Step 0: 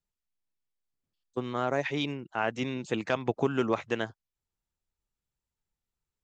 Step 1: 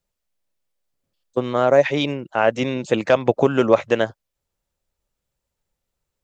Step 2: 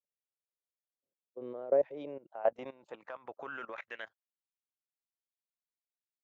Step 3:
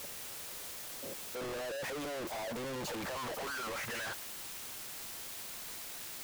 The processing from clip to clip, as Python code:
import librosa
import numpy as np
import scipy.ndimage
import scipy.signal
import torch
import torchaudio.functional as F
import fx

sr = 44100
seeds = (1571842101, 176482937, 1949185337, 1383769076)

y1 = fx.peak_eq(x, sr, hz=560.0, db=10.0, octaves=0.44)
y1 = y1 * 10.0 ** (8.5 / 20.0)
y2 = fx.filter_sweep_bandpass(y1, sr, from_hz=460.0, to_hz=3900.0, start_s=1.79, end_s=4.98, q=2.2)
y2 = fx.level_steps(y2, sr, step_db=18)
y2 = y2 * 10.0 ** (-6.0 / 20.0)
y3 = np.sign(y2) * np.sqrt(np.mean(np.square(y2)))
y3 = y3 * 10.0 ** (1.0 / 20.0)